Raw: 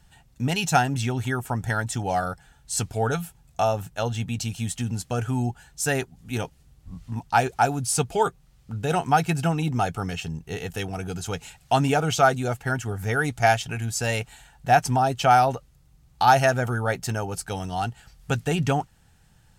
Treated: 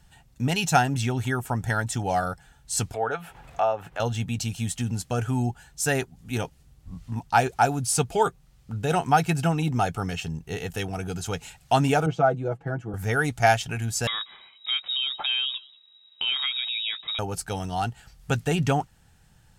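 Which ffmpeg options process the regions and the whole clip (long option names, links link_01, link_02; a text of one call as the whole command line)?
ffmpeg -i in.wav -filter_complex "[0:a]asettb=1/sr,asplit=3[link_01][link_02][link_03];[link_01]atrim=end=2.944[link_04];[link_02]atrim=start=2.94:end=4,asetpts=PTS-STARTPTS,afade=type=in:duration=0.004:curve=qsin,afade=type=out:start_time=1.056:duration=0.004:curve=qsin,acrossover=split=370 2900:gain=0.158 1 0.1[link_05][link_06][link_07];[link_05][link_06][link_07]amix=inputs=3:normalize=0,acompressor=mode=upward:threshold=-27dB:ratio=2.5:attack=3.2:release=140:knee=2.83:detection=peak[link_08];[link_03]atrim=start=3.996[link_09];[link_04][link_08]acrossfade=duration=0.004:curve1=hsin:curve2=qsin[link_10];[link_10][link_09]acrossfade=duration=0.004:curve1=qsin:curve2=hsin,asettb=1/sr,asplit=3[link_11][link_12][link_13];[link_11]atrim=end=12.064[link_14];[link_12]atrim=start=12.06:end=12.94,asetpts=PTS-STARTPTS,afade=type=in:duration=0.004:curve=qsin,afade=type=out:start_time=0.876:duration=0.004:curve=qsin,bandpass=frequency=290:width_type=q:width=0.73,aecho=1:1:6.1:0.71,atrim=end_sample=38808[link_15];[link_13]atrim=start=12.936[link_16];[link_14][link_15]acrossfade=duration=0.004:curve1=hsin:curve2=qsin[link_17];[link_17][link_16]acrossfade=duration=0.004:curve1=qsin:curve2=hsin,asettb=1/sr,asplit=3[link_18][link_19][link_20];[link_18]atrim=end=14.074[link_21];[link_19]atrim=start=14.07:end=17.19,asetpts=PTS-STARTPTS,afade=type=in:duration=0.004:curve=qsin,afade=type=out:start_time=3.116:duration=0.004:curve=qsin,acompressor=threshold=-26dB:ratio=3:attack=3.2:release=140:knee=1:detection=peak,aecho=1:1:187:0.0631,atrim=end_sample=137592,lowpass=frequency=3300:width_type=q:width=0.5098,lowpass=frequency=3300:width_type=q:width=0.6013,lowpass=frequency=3300:width_type=q:width=0.9,lowpass=frequency=3300:width_type=q:width=2.563,afreqshift=-3900[link_22];[link_20]atrim=start=17.186[link_23];[link_21][link_22]acrossfade=duration=0.004:curve1=hsin:curve2=qsin[link_24];[link_24][link_23]acrossfade=duration=0.004:curve1=qsin:curve2=hsin" out.wav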